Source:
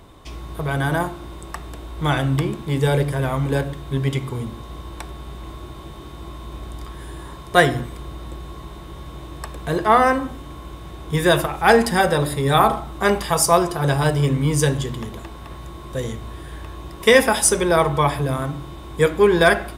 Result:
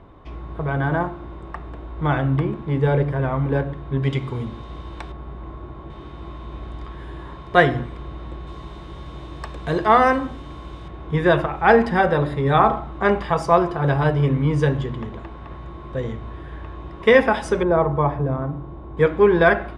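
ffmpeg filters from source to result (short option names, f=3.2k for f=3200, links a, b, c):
-af "asetnsamples=n=441:p=0,asendcmd='4.03 lowpass f 3700;5.12 lowpass f 1600;5.9 lowpass f 2800;8.47 lowpass f 4800;10.88 lowpass f 2200;17.63 lowpass f 1000;18.97 lowpass f 2100',lowpass=1.8k"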